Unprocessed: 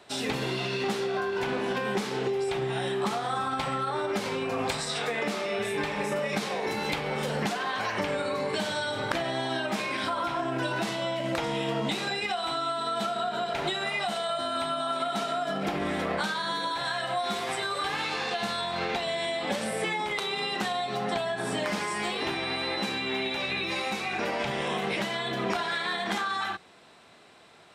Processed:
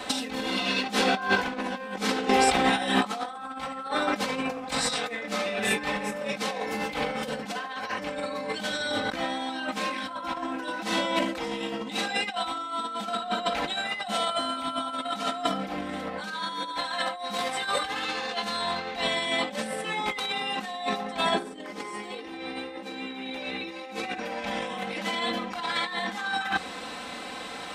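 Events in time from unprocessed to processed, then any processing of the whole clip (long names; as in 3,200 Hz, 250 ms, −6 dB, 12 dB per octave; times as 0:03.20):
0:21.34–0:24.18: parametric band 380 Hz +12.5 dB 0.8 octaves
whole clip: comb filter 3.9 ms, depth 96%; compressor whose output falls as the input rises −34 dBFS, ratio −0.5; level +6 dB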